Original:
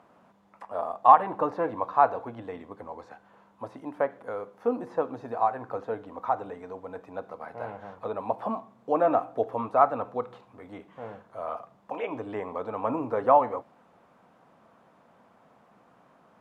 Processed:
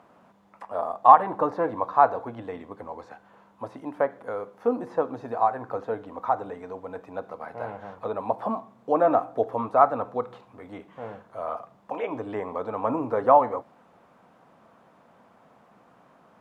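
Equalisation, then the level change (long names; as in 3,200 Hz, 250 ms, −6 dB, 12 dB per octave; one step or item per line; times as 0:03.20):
dynamic equaliser 2,700 Hz, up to −5 dB, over −53 dBFS, Q 3
+2.5 dB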